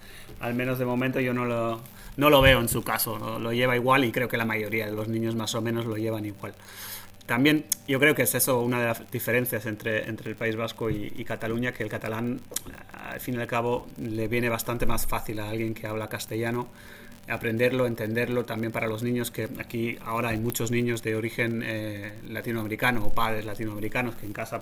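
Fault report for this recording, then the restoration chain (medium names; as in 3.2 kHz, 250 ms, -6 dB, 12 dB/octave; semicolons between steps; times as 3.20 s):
crackle 56 per s -34 dBFS
20.50 s: pop -16 dBFS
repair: de-click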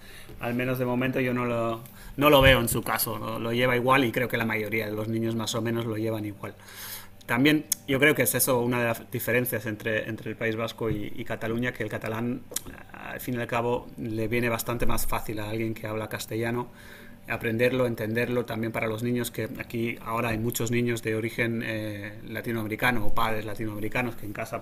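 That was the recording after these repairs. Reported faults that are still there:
20.50 s: pop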